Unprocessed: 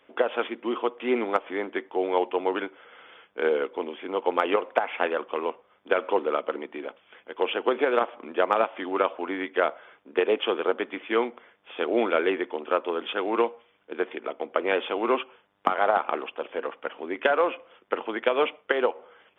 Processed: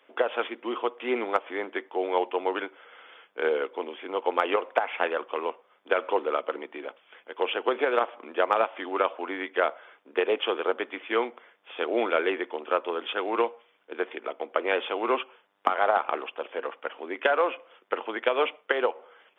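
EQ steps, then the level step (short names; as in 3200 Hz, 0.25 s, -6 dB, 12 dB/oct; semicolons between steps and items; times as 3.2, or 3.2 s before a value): Bessel high-pass 370 Hz, order 2; 0.0 dB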